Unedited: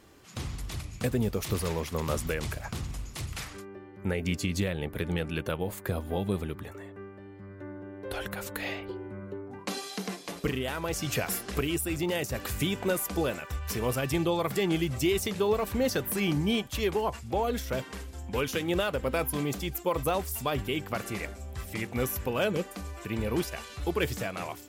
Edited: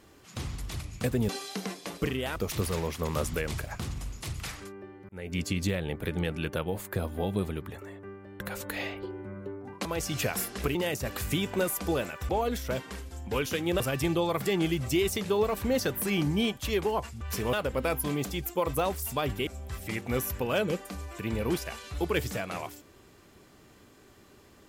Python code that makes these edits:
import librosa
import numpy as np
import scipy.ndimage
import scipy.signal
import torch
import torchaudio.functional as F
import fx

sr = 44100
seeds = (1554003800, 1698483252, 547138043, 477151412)

y = fx.edit(x, sr, fx.fade_in_span(start_s=4.02, length_s=0.35),
    fx.cut(start_s=7.33, length_s=0.93),
    fx.move(start_s=9.71, length_s=1.07, to_s=1.29),
    fx.cut(start_s=11.68, length_s=0.36),
    fx.swap(start_s=13.58, length_s=0.32, other_s=17.31, other_length_s=1.51),
    fx.cut(start_s=20.76, length_s=0.57), tone=tone)